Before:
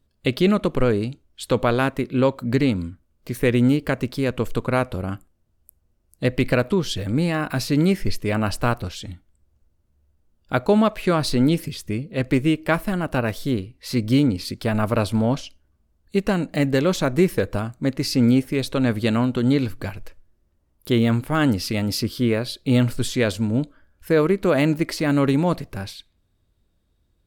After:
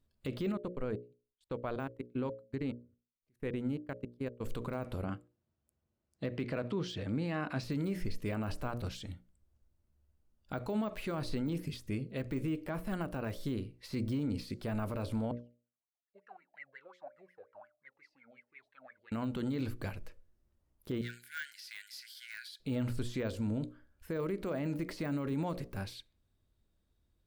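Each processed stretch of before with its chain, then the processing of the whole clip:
0.52–4.41 high shelf 2600 Hz -10.5 dB + level quantiser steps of 21 dB + upward expander 2.5:1, over -34 dBFS
5.04–7.64 HPF 110 Hz + air absorption 100 m
15.31–19.12 wah 5.6 Hz 610–2200 Hz, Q 16 + cascading flanger falling 1.8 Hz
21.01–22.6 bell 2700 Hz -7 dB 0.26 oct + overloaded stage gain 13.5 dB + brick-wall FIR high-pass 1400 Hz
whole clip: de-esser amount 90%; notches 60/120/180/240/300/360/420/480/540/600 Hz; limiter -18 dBFS; gain -8.5 dB

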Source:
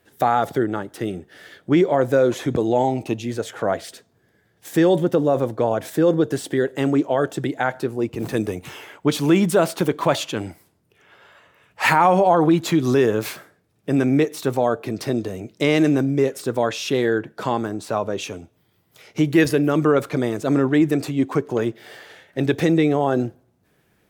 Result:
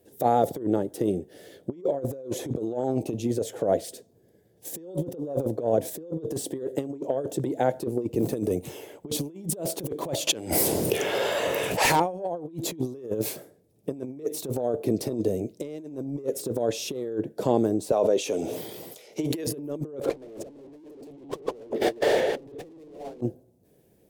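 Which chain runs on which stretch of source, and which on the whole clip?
10.27–12 dynamic EQ 390 Hz, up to -4 dB, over -34 dBFS, Q 0.71 + overdrive pedal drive 15 dB, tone 7400 Hz, clips at -5 dBFS + fast leveller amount 70%
17.92–19.47 weighting filter A + sustainer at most 23 dB/s
20.01–23.21 reverse delay 0.2 s, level -6.5 dB + high shelf 2100 Hz -10 dB + overdrive pedal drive 39 dB, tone 3100 Hz, clips at -6 dBFS
whole clip: EQ curve 520 Hz 0 dB, 1300 Hz -25 dB, 11000 Hz -7 dB; negative-ratio compressor -25 dBFS, ratio -0.5; low shelf 370 Hz -11 dB; gain +3 dB

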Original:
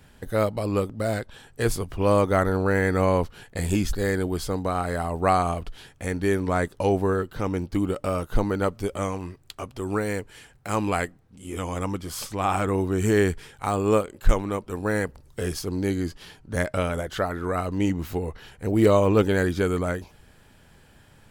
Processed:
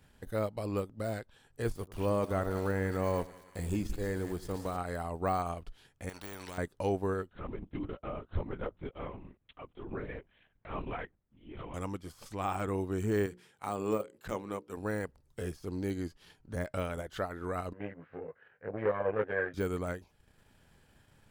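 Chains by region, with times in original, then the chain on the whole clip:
1.75–4.77 high shelf 3900 Hz +11.5 dB + sample gate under -34 dBFS + split-band echo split 1100 Hz, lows 93 ms, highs 0.171 s, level -13 dB
6.09–6.58 de-esser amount 80% + spectral compressor 4:1
7.29–11.74 flange 1.3 Hz, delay 1.3 ms, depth 9.5 ms, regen -57% + LPC vocoder at 8 kHz whisper
13.26–14.77 HPF 140 Hz + notches 60/120/180/240/300/360/420/480/540 Hz
17.73–19.54 doubler 19 ms -2 dB + tube stage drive 13 dB, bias 0.8 + speaker cabinet 190–2200 Hz, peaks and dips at 220 Hz -8 dB, 320 Hz -9 dB, 510 Hz +7 dB, 900 Hz -5 dB, 1600 Hz +8 dB
whole clip: de-esser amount 80%; transient shaper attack 0 dB, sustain -7 dB; gain -9 dB

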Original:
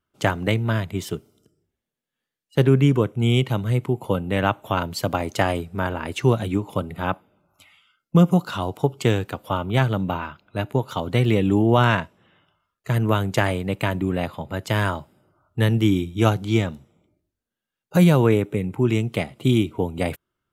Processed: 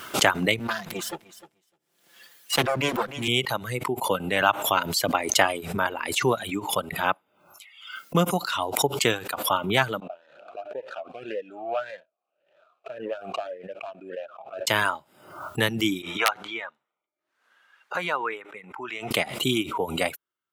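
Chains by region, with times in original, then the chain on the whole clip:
0.59–3.28 minimum comb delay 5.8 ms + feedback echo 0.303 s, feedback 17%, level -12 dB
10–14.67 median filter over 25 samples + vowel sweep a-e 1.8 Hz
16.02–19.11 band-pass 1300 Hz, Q 1.4 + wrapped overs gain 12 dB
whole clip: reverb removal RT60 1.4 s; HPF 930 Hz 6 dB/oct; backwards sustainer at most 80 dB/s; gain +5 dB

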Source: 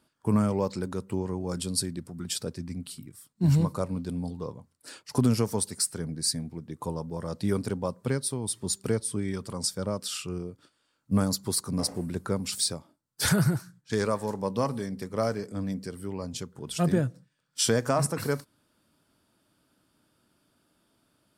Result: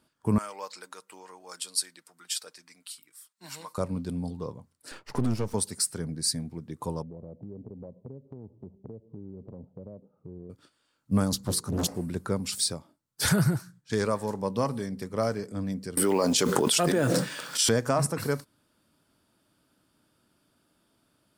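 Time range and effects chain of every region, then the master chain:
0.38–3.78 HPF 1100 Hz + comb 6.5 ms, depth 33%
4.91–5.54 half-wave gain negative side -12 dB + high shelf 5700 Hz -10 dB + three-band squash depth 40%
7.02–10.5 steep low-pass 710 Hz + compressor, threshold -39 dBFS
11.32–11.87 low shelf 190 Hz +6.5 dB + notches 60/120/180/240/300/360/420/480 Hz + Doppler distortion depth 0.85 ms
15.97–17.69 HPF 350 Hz + modulation noise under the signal 31 dB + fast leveller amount 100%
whole clip: dry

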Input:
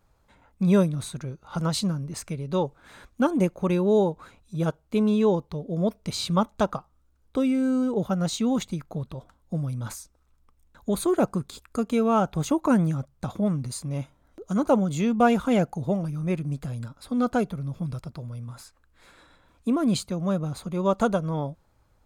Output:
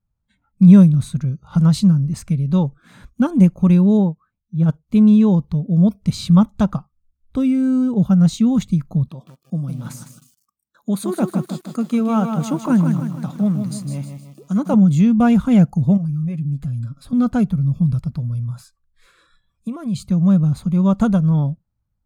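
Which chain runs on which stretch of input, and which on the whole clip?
3.97–4.69 LPF 2700 Hz 6 dB/oct + upward expander, over -43 dBFS
9.08–14.74 HPF 250 Hz + lo-fi delay 0.156 s, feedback 55%, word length 8-bit, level -6.5 dB
15.97–17.13 comb 7.3 ms, depth 57% + compressor 2:1, threshold -41 dBFS
18.34–20.04 bell 270 Hz -13 dB 0.35 oct + compressor 10:1, threshold -29 dBFS
whole clip: spectral noise reduction 21 dB; resonant low shelf 270 Hz +11.5 dB, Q 1.5

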